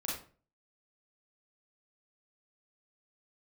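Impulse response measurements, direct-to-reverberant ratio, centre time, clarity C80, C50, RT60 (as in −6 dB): −5.5 dB, 45 ms, 8.0 dB, 2.0 dB, 0.40 s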